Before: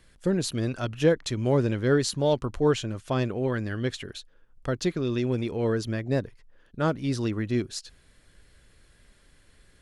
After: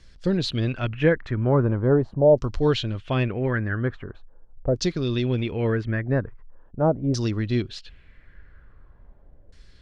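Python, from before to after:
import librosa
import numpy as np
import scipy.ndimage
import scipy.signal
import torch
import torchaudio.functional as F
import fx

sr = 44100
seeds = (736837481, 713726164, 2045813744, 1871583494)

y = fx.low_shelf(x, sr, hz=110.0, db=11.0)
y = fx.filter_lfo_lowpass(y, sr, shape='saw_down', hz=0.42, low_hz=570.0, high_hz=5900.0, q=2.7)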